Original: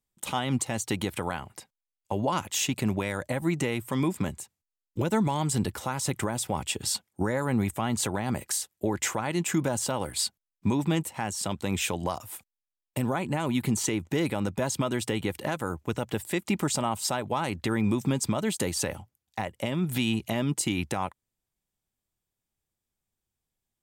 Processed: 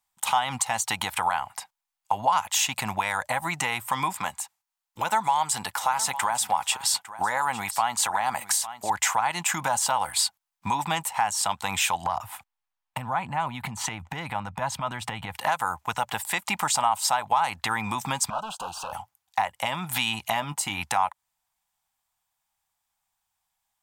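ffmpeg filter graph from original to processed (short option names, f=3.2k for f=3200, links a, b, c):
-filter_complex "[0:a]asettb=1/sr,asplit=3[a][b][c];[a]atrim=end=4.204[d];[b]atrim=start=4.2:end=8.9,asetpts=PTS-STARTPTS,afade=t=in:d=0.004:c=qsin,afade=t=out:st=4.696:d=0.004:c=qsin,lowshelf=f=180:g=-10.5,aecho=1:1:854:0.141,atrim=end_sample=207270[e];[c]atrim=start=8.896[f];[d][e]acrossfade=d=0.004:c1=hsin:c2=qsin[g];[g][f]acrossfade=d=0.004:c1=qsin:c2=hsin,asettb=1/sr,asplit=3[h][i][j];[h]atrim=end=12.064[k];[i]atrim=start=12.06:end=15.36,asetpts=PTS-STARTPTS,afade=t=in:d=0.004:c=qsin,afade=t=out:st=3.296:d=0.004:c=qsin,bass=f=250:g=10,treble=f=4k:g=-10,acompressor=threshold=-27dB:ratio=4:attack=3.2:release=140:knee=1:detection=peak[l];[j]atrim=start=15.356[m];[k][l]acrossfade=d=0.004:c1=hsin:c2=qsin[n];[n][m]acrossfade=d=0.004:c1=qsin:c2=hsin,asettb=1/sr,asplit=3[o][p][q];[o]atrim=end=18.304[r];[p]atrim=start=18.3:end=18.93,asetpts=PTS-STARTPTS,afade=t=in:d=0.004:c=qsin,afade=t=out:st=0.626:d=0.004:c=qsin,volume=29.5dB,asoftclip=hard,volume=-29.5dB,asplit=2[s][t];[t]highpass=f=720:p=1,volume=7dB,asoftclip=type=tanh:threshold=-26.5dB[u];[s][u]amix=inputs=2:normalize=0,lowpass=f=1.2k:p=1,volume=-6dB,asuperstop=centerf=2000:order=12:qfactor=2.1[v];[q]atrim=start=18.926[w];[r][v]acrossfade=d=0.004:c1=hsin:c2=qsin[x];[x][w]acrossfade=d=0.004:c1=qsin:c2=hsin,asettb=1/sr,asplit=3[y][z][aa];[y]atrim=end=20.404[ab];[z]atrim=start=20.4:end=20.81,asetpts=PTS-STARTPTS,afade=t=in:d=0.004:c=qsin,afade=t=out:st=0.406:d=0.004:c=qsin,lowpass=f=1.3k:p=1,aemphasis=mode=production:type=50fm,asplit=2[ac][ad];[ad]adelay=20,volume=-13dB[ae];[ac][ae]amix=inputs=2:normalize=0,atrim=end_sample=18081[af];[aa]atrim=start=20.806[ag];[ab][af]acrossfade=d=0.004:c1=hsin:c2=qsin[ah];[ah][ag]acrossfade=d=0.004:c1=qsin:c2=hsin,lowshelf=f=570:t=q:w=3:g=-13.5,bandreject=f=580:w=12,acompressor=threshold=-30dB:ratio=2,volume=7.5dB"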